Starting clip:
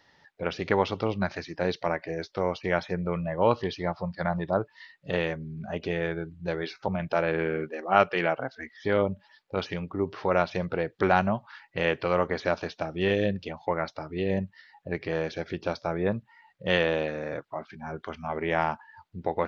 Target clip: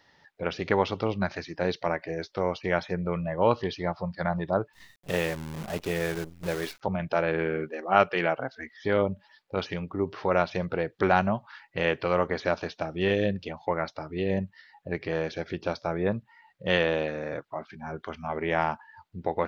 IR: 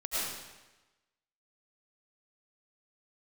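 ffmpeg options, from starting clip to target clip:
-filter_complex "[0:a]asettb=1/sr,asplit=3[a][b][c];[a]atrim=end=4.734[d];[b]atrim=start=4.73:end=6.81,asetpts=PTS-STARTPTS,afade=t=in:d=0.004:c=qsin,afade=t=out:st=2.076:d=0.004:c=qsin,acrusher=bits=7:dc=4:mix=0:aa=0.000001[e];[c]atrim=start=6.806[f];[d][e]acrossfade=d=0.004:c1=hsin:c2=qsin[g];[g][f]acrossfade=d=0.004:c1=qsin:c2=hsin"

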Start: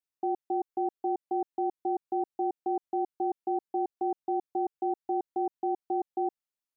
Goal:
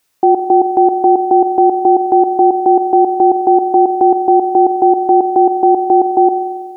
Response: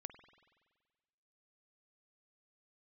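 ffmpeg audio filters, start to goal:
-filter_complex "[0:a]asplit=2[a][b];[1:a]atrim=start_sample=2205,lowshelf=f=260:g=-7.5[c];[b][c]afir=irnorm=-1:irlink=0,volume=5.5dB[d];[a][d]amix=inputs=2:normalize=0,alimiter=level_in=24dB:limit=-1dB:release=50:level=0:latency=1,volume=-1dB"

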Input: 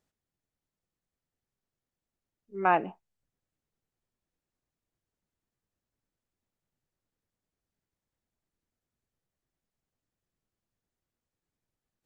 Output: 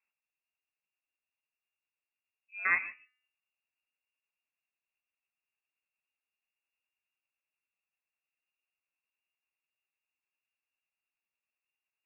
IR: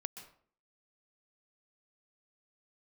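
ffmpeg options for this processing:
-filter_complex "[0:a]bandreject=f=258.9:t=h:w=4,bandreject=f=517.8:t=h:w=4,bandreject=f=776.7:t=h:w=4,bandreject=f=1.0356k:t=h:w=4,bandreject=f=1.2945k:t=h:w=4,bandreject=f=1.5534k:t=h:w=4,asplit=2[a][b];[1:a]atrim=start_sample=2205,atrim=end_sample=6174,adelay=17[c];[b][c]afir=irnorm=-1:irlink=0,volume=-6dB[d];[a][d]amix=inputs=2:normalize=0,lowpass=f=2.4k:t=q:w=0.5098,lowpass=f=2.4k:t=q:w=0.6013,lowpass=f=2.4k:t=q:w=0.9,lowpass=f=2.4k:t=q:w=2.563,afreqshift=-2800,volume=-5.5dB"

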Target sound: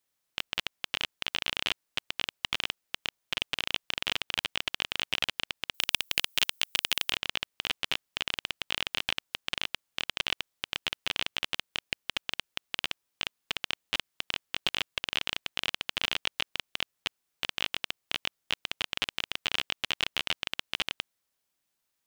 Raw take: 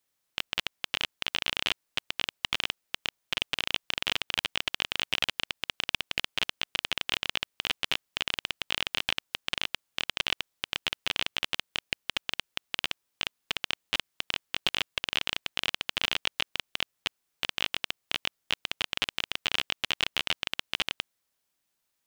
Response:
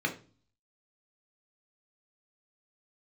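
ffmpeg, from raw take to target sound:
-filter_complex "[0:a]asettb=1/sr,asplit=3[a][b][c];[a]atrim=end=5.744[d];[b]atrim=start=5.74:end=7.12,asetpts=PTS-STARTPTS,afade=t=in:d=0.004:c=qsin,afade=t=out:st=1.376:d=0.004:c=qsin,aemphasis=mode=production:type=75fm[e];[c]atrim=start=7.116[f];[d][e]acrossfade=d=0.004:c1=hsin:c2=qsin[g];[g][f]acrossfade=d=0.004:c1=qsin:c2=hsin,volume=-1.5dB"

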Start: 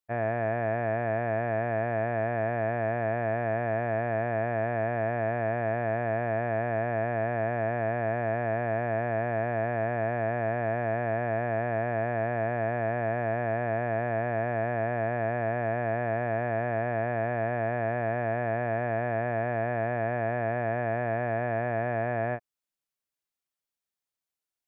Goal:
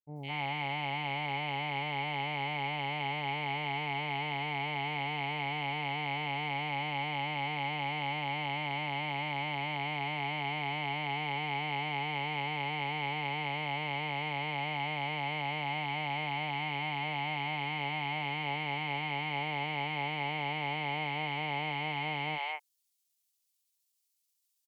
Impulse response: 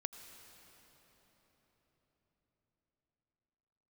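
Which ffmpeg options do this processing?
-filter_complex "[0:a]asetrate=55563,aresample=44100,atempo=0.793701,aexciter=amount=7.9:drive=3.5:freq=2.2k,acrossover=split=530|2500[a][b][c];[c]adelay=160[d];[b]adelay=210[e];[a][e][d]amix=inputs=3:normalize=0,volume=-7dB"

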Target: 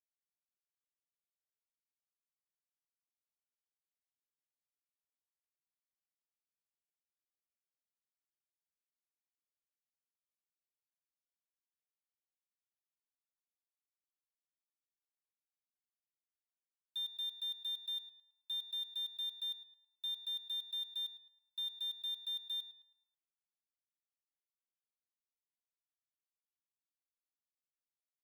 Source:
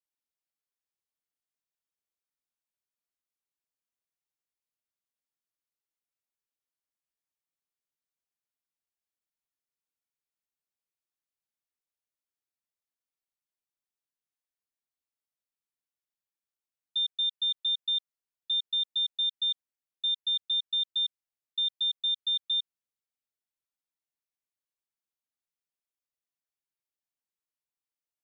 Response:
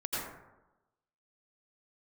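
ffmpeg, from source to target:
-filter_complex "[0:a]aeval=exprs='val(0)*gte(abs(val(0)),0.00501)':c=same,equalizer=f=3.4k:t=o:w=0.81:g=-12,asplit=2[a][b];[b]adelay=108,lowpass=f=3.2k:p=1,volume=-10.5dB,asplit=2[c][d];[d]adelay=108,lowpass=f=3.2k:p=1,volume=0.47,asplit=2[e][f];[f]adelay=108,lowpass=f=3.2k:p=1,volume=0.47,asplit=2[g][h];[h]adelay=108,lowpass=f=3.2k:p=1,volume=0.47,asplit=2[i][j];[j]adelay=108,lowpass=f=3.2k:p=1,volume=0.47[k];[a][c][e][g][i][k]amix=inputs=6:normalize=0"

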